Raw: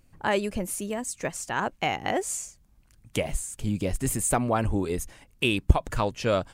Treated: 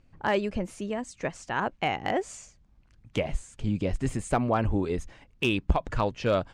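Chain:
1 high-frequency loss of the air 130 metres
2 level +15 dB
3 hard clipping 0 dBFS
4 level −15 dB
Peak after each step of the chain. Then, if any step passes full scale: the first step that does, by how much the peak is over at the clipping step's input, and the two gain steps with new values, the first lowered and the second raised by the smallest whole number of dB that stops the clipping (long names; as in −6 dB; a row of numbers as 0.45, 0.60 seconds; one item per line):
−6.5, +8.5, 0.0, −15.0 dBFS
step 2, 8.5 dB
step 2 +6 dB, step 4 −6 dB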